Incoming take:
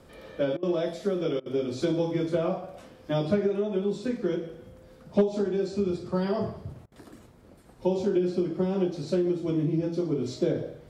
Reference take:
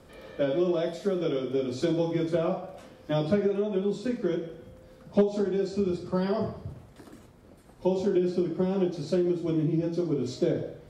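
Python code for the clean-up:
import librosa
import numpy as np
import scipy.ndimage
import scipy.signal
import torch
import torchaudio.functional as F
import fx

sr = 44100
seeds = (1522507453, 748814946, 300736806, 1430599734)

y = fx.fix_interpolate(x, sr, at_s=(0.57, 1.4, 6.86), length_ms=57.0)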